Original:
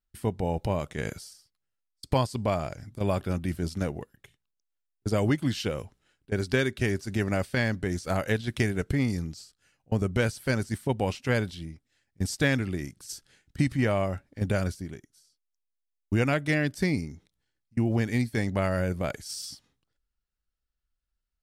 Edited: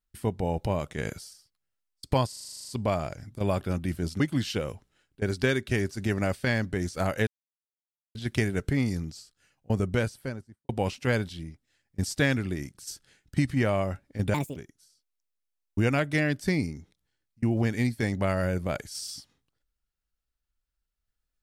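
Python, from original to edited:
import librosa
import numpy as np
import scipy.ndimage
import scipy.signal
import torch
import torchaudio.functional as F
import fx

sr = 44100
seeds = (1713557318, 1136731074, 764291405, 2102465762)

y = fx.studio_fade_out(x, sr, start_s=10.04, length_s=0.87)
y = fx.edit(y, sr, fx.stutter(start_s=2.28, slice_s=0.04, count=11),
    fx.cut(start_s=3.8, length_s=1.5),
    fx.insert_silence(at_s=8.37, length_s=0.88),
    fx.speed_span(start_s=14.56, length_s=0.35, speed=1.56), tone=tone)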